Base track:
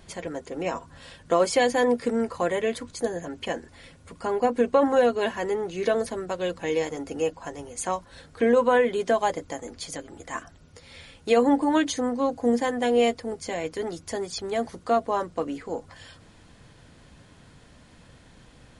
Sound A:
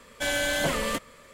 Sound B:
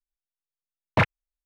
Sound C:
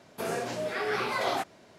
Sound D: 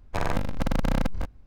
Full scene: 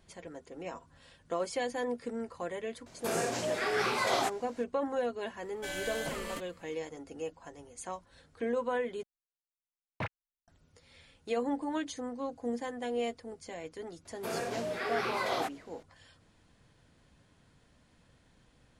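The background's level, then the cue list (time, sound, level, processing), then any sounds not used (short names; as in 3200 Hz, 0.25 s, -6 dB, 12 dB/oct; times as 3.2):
base track -12.5 dB
2.86 add C -0.5 dB + bell 7500 Hz +7.5 dB 0.94 oct
5.42 add A -11.5 dB + notch 3500 Hz, Q 18
9.03 replace with B -16.5 dB
14.05 add C -3.5 dB
not used: D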